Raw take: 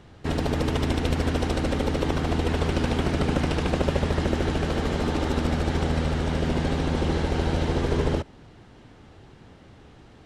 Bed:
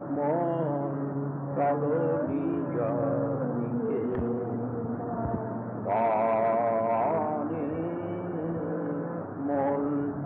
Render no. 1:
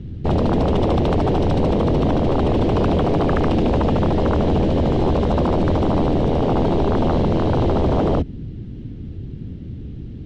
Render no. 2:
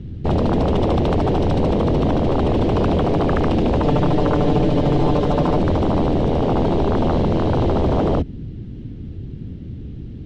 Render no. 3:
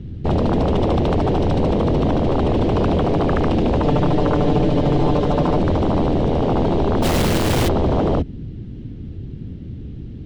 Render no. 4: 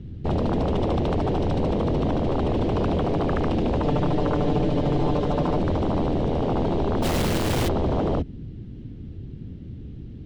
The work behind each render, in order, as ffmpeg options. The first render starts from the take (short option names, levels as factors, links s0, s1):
-filter_complex "[0:a]acrossover=split=320[s0][s1];[s0]aeval=exprs='0.2*sin(PI/2*6.31*val(0)/0.2)':c=same[s2];[s1]bandpass=f=3200:t=q:w=1.2:csg=0[s3];[s2][s3]amix=inputs=2:normalize=0"
-filter_complex "[0:a]asettb=1/sr,asplit=3[s0][s1][s2];[s0]atrim=end=3.824[s3];[s1]atrim=start=3.82:end=5.58,asetpts=PTS-STARTPTS,afade=t=in:d=0.004:c=qsin,afade=t=out:st=1.756:d=0.004:c=qsin,aecho=1:1:6.8:0.61,atrim=end_sample=77616[s4];[s2]atrim=start=5.576[s5];[s3][s4]acrossfade=d=0.004:c1=hsin:c2=qsin[s6];[s6][s5]acrossfade=d=0.004:c1=qsin:c2=hsin"
-filter_complex "[0:a]asplit=3[s0][s1][s2];[s0]afade=t=out:st=7.02:d=0.02[s3];[s1]acrusher=bits=2:mode=log:mix=0:aa=0.000001,afade=t=in:st=7.02:d=0.02,afade=t=out:st=7.67:d=0.02[s4];[s2]afade=t=in:st=7.67:d=0.02[s5];[s3][s4][s5]amix=inputs=3:normalize=0"
-af "volume=0.531"